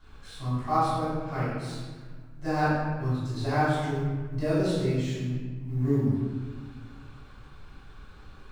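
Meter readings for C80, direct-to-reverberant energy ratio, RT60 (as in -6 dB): 0.5 dB, -14.5 dB, 1.5 s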